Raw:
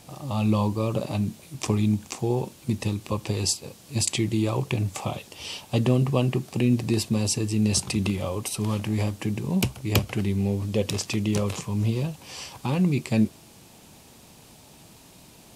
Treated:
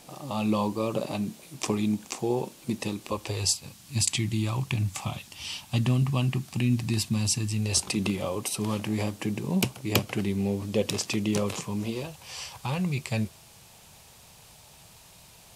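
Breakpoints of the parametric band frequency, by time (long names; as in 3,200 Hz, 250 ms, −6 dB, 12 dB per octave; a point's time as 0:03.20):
parametric band −15 dB 1.1 octaves
0:02.99 88 Hz
0:03.67 460 Hz
0:07.48 460 Hz
0:08.02 66 Hz
0:11.71 66 Hz
0:12.21 280 Hz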